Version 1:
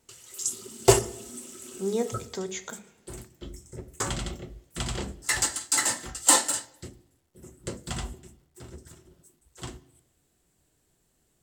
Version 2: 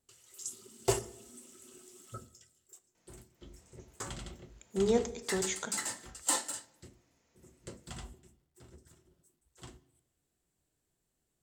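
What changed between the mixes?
speech: entry +2.95 s
background −11.5 dB

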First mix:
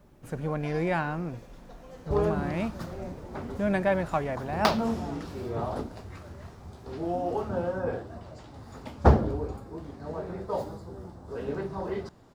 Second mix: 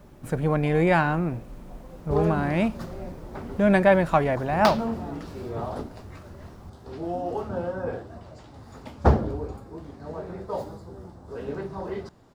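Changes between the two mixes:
speech +7.5 dB
first sound: add Chebyshev low-pass filter 1,200 Hz, order 8

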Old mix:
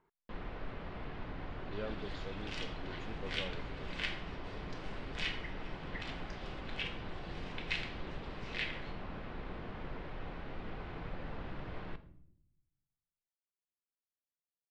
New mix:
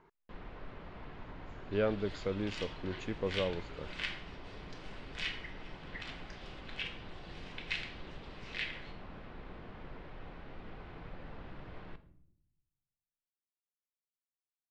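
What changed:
speech +11.0 dB
first sound −4.5 dB

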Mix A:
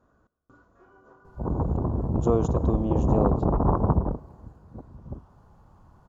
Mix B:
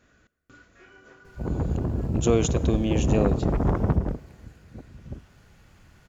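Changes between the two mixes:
speech +3.0 dB
master: add high shelf with overshoot 1,500 Hz +13 dB, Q 3

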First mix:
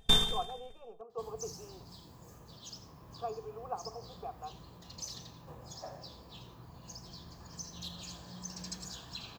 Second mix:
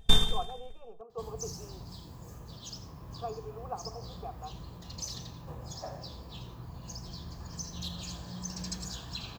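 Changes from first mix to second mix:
second sound +3.5 dB
master: add low-shelf EQ 120 Hz +9.5 dB

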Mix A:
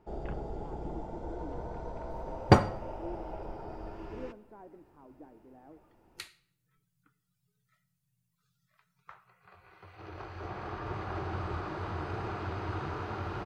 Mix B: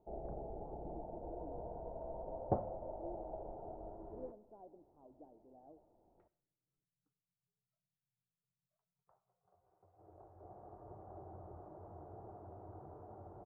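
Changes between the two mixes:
second sound −8.0 dB
master: add transistor ladder low-pass 780 Hz, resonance 55%

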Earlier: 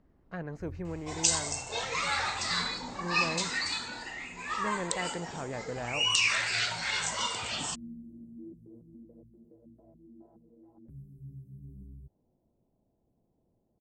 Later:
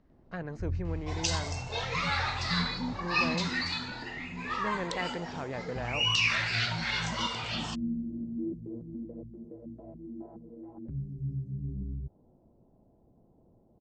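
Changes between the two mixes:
speech: remove high-frequency loss of the air 150 metres
first sound +11.5 dB
master: add low-pass filter 5,200 Hz 24 dB per octave

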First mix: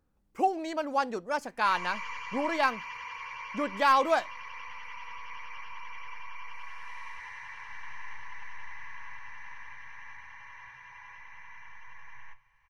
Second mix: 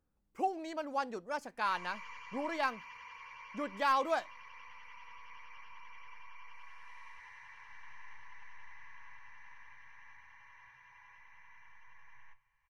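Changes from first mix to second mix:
speech −7.0 dB
background −10.0 dB

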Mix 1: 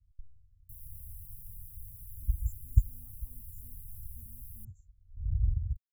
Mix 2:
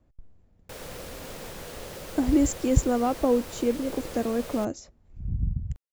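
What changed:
background: add parametric band 510 Hz +12 dB 0.49 octaves
master: remove inverse Chebyshev band-stop filter 270–5,500 Hz, stop band 50 dB

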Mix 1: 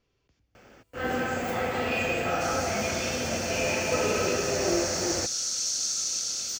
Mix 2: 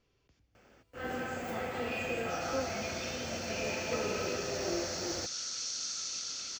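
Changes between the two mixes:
first sound −8.5 dB
second sound: add high-frequency loss of the air 150 metres

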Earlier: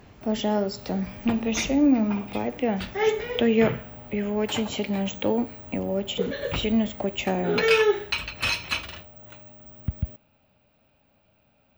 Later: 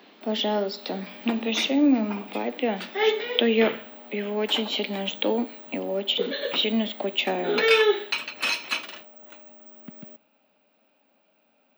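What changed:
speech: add low-pass with resonance 3,800 Hz, resonance Q 3.2
master: add Butterworth high-pass 220 Hz 36 dB per octave

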